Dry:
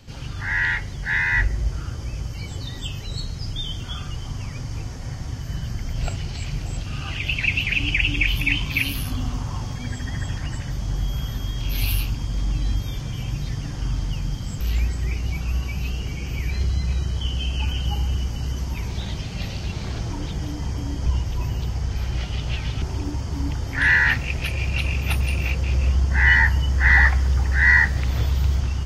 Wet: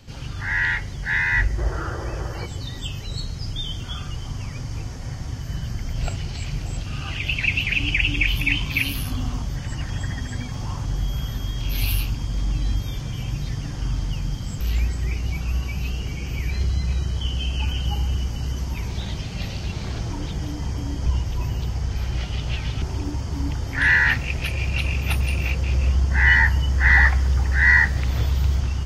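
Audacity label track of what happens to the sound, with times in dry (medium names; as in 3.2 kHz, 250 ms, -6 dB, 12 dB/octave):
1.580000	2.450000	time-frequency box 320–2000 Hz +12 dB
9.420000	10.850000	reverse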